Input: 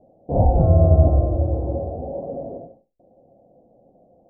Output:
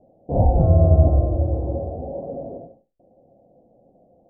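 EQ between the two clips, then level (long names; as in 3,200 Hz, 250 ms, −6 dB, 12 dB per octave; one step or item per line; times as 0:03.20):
high-frequency loss of the air 400 metres
0.0 dB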